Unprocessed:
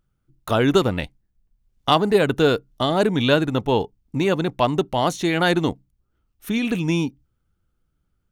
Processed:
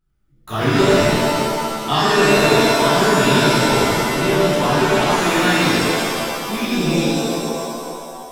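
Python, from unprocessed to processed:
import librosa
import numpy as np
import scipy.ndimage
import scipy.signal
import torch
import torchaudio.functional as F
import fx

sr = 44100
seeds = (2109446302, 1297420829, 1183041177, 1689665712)

y = fx.peak_eq(x, sr, hz=540.0, db=-12.0, octaves=0.33)
y = fx.rev_shimmer(y, sr, seeds[0], rt60_s=2.2, semitones=7, shimmer_db=-2, drr_db=-11.5)
y = y * librosa.db_to_amplitude(-8.5)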